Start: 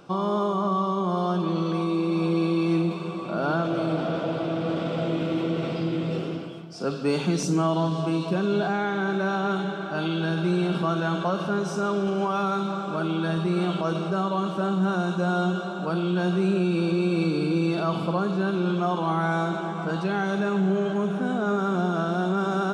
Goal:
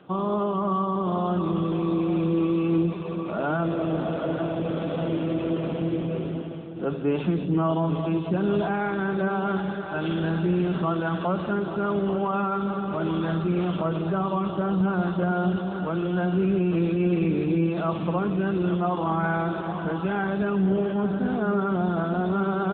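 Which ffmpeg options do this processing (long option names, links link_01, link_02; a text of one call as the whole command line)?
ffmpeg -i in.wav -filter_complex "[0:a]asettb=1/sr,asplit=3[link_01][link_02][link_03];[link_01]atrim=end=5.634[link_04];[link_02]atrim=start=5.63:end=7.16,asetpts=PTS-STARTPTS,afade=type=in:duration=0.004:curve=qsin,afade=type=out:start_time=1.526:duration=0.004:curve=qsin,aemphasis=mode=reproduction:type=cd[link_05];[link_03]atrim=start=7.156[link_06];[link_04][link_05]acrossfade=duration=0.004:curve1=hsin:curve2=qsin[link_07];[link_07][link_06]acrossfade=duration=0.004:curve1=qsin:curve2=hsin,asplit=2[link_08][link_09];[link_09]aecho=0:1:842:0.316[link_10];[link_08][link_10]amix=inputs=2:normalize=0" -ar 8000 -c:a libopencore_amrnb -b:a 7950 out.amr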